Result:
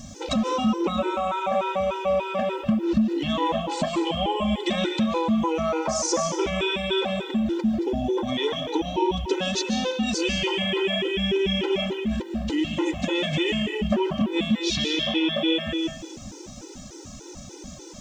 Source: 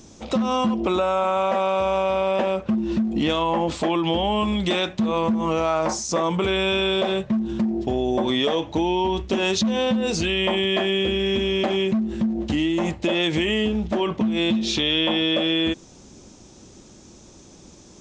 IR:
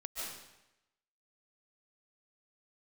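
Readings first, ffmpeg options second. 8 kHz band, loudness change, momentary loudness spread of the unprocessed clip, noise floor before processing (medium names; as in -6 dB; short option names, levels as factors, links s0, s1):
+1.5 dB, -2.5 dB, 3 LU, -48 dBFS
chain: -filter_complex "[0:a]acompressor=threshold=0.0447:ratio=10,acrusher=bits=11:mix=0:aa=0.000001,asplit=2[s0][s1];[1:a]atrim=start_sample=2205[s2];[s1][s2]afir=irnorm=-1:irlink=0,volume=0.891[s3];[s0][s3]amix=inputs=2:normalize=0,afftfilt=real='re*gt(sin(2*PI*3.4*pts/sr)*(1-2*mod(floor(b*sr/1024/260),2)),0)':imag='im*gt(sin(2*PI*3.4*pts/sr)*(1-2*mod(floor(b*sr/1024/260),2)),0)':win_size=1024:overlap=0.75,volume=1.78"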